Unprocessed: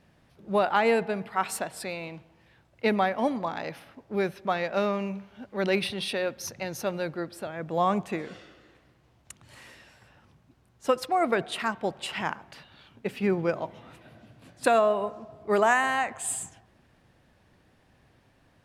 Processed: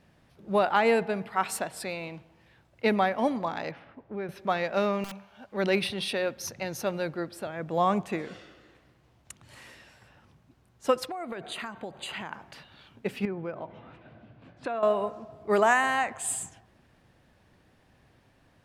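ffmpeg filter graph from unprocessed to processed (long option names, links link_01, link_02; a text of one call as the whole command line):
ffmpeg -i in.wav -filter_complex "[0:a]asettb=1/sr,asplit=3[link_01][link_02][link_03];[link_01]atrim=end=3.714[link_04];[link_02]atrim=start=3.71:end=4.29,asetpts=PTS-STARTPTS,afade=type=in:duration=0.004:curve=qsin,afade=type=out:start_time=0.576:duration=0.004:curve=qsin,lowpass=2300,acompressor=threshold=-36dB:ratio=2:attack=3.2:release=140:knee=1:detection=peak[link_05];[link_03]atrim=start=4.286[link_06];[link_04][link_05]acrossfade=duration=0.004:curve1=hsin:curve2=qsin[link_07];[link_07][link_06]acrossfade=duration=0.004:curve1=qsin:curve2=hsin,asettb=1/sr,asplit=3[link_08][link_09][link_10];[link_08]atrim=end=5.044[link_11];[link_09]atrim=start=5.04:end=5.52,asetpts=PTS-STARTPTS,afade=type=in:duration=0.004:curve=qsin,afade=type=out:start_time=0.476:duration=0.004:curve=qsin,lowshelf=frequency=510:width_type=q:width=1.5:gain=-7,bandreject=frequency=2000:width=11,aeval=exprs='(mod(44.7*val(0)+1,2)-1)/44.7':channel_layout=same[link_12];[link_10]atrim=start=5.516[link_13];[link_11][link_12]acrossfade=duration=0.004:curve1=hsin:curve2=qsin[link_14];[link_14][link_13]acrossfade=duration=0.004:curve1=qsin:curve2=hsin,asettb=1/sr,asplit=3[link_15][link_16][link_17];[link_15]atrim=end=11.104[link_18];[link_16]atrim=start=11.1:end=12.33,asetpts=PTS-STARTPTS,afade=type=in:duration=0.004:curve=qsin,afade=type=out:start_time=1.226:duration=0.004:curve=qsin,acompressor=threshold=-32dB:ratio=16:attack=3.2:release=140:knee=1:detection=peak,asuperstop=centerf=5400:order=20:qfactor=5.8[link_19];[link_17]atrim=start=12.326[link_20];[link_18][link_19]acrossfade=duration=0.004:curve1=hsin:curve2=qsin[link_21];[link_21][link_20]acrossfade=duration=0.004:curve1=qsin:curve2=hsin,asettb=1/sr,asplit=3[link_22][link_23][link_24];[link_22]atrim=end=13.254[link_25];[link_23]atrim=start=13.25:end=14.83,asetpts=PTS-STARTPTS,afade=type=in:duration=0.004:curve=qsin,afade=type=out:start_time=1.576:duration=0.004:curve=qsin,lowpass=2600,bandreject=frequency=1900:width=24,acompressor=threshold=-37dB:ratio=2:attack=3.2:release=140:knee=1:detection=peak[link_26];[link_24]atrim=start=14.826[link_27];[link_25][link_26]acrossfade=duration=0.004:curve1=hsin:curve2=qsin[link_28];[link_28][link_27]acrossfade=duration=0.004:curve1=qsin:curve2=hsin" out.wav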